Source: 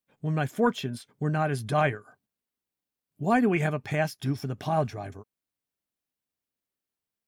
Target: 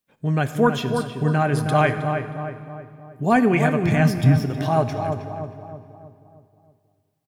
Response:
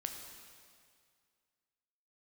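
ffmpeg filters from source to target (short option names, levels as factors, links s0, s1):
-filter_complex "[0:a]asplit=2[s0][s1];[s1]adelay=316,lowpass=f=1600:p=1,volume=0.501,asplit=2[s2][s3];[s3]adelay=316,lowpass=f=1600:p=1,volume=0.5,asplit=2[s4][s5];[s5]adelay=316,lowpass=f=1600:p=1,volume=0.5,asplit=2[s6][s7];[s7]adelay=316,lowpass=f=1600:p=1,volume=0.5,asplit=2[s8][s9];[s9]adelay=316,lowpass=f=1600:p=1,volume=0.5,asplit=2[s10][s11];[s11]adelay=316,lowpass=f=1600:p=1,volume=0.5[s12];[s0][s2][s4][s6][s8][s10][s12]amix=inputs=7:normalize=0,asplit=3[s13][s14][s15];[s13]afade=t=out:st=3.82:d=0.02[s16];[s14]asubboost=boost=5.5:cutoff=180,afade=t=in:st=3.82:d=0.02,afade=t=out:st=4.43:d=0.02[s17];[s15]afade=t=in:st=4.43:d=0.02[s18];[s16][s17][s18]amix=inputs=3:normalize=0,asplit=2[s19][s20];[1:a]atrim=start_sample=2205[s21];[s20][s21]afir=irnorm=-1:irlink=0,volume=0.944[s22];[s19][s22]amix=inputs=2:normalize=0,volume=1.12"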